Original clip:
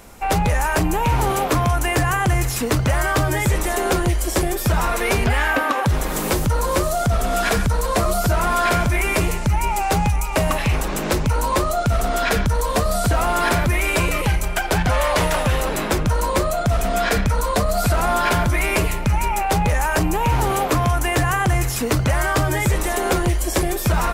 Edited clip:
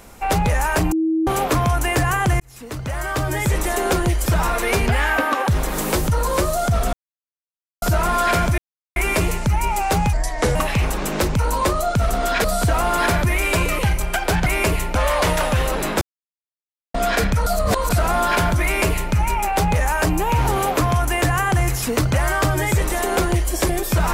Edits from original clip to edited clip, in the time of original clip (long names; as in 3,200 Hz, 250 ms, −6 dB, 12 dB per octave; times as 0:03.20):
0:00.92–0:01.27: beep over 321 Hz −16 dBFS
0:02.40–0:03.61: fade in
0:04.26–0:04.64: remove
0:07.31–0:08.20: silence
0:08.96: splice in silence 0.38 s
0:10.13–0:10.46: play speed 78%
0:12.35–0:12.87: remove
0:15.95–0:16.88: silence
0:17.40–0:17.84: reverse
0:18.58–0:19.07: duplicate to 0:14.89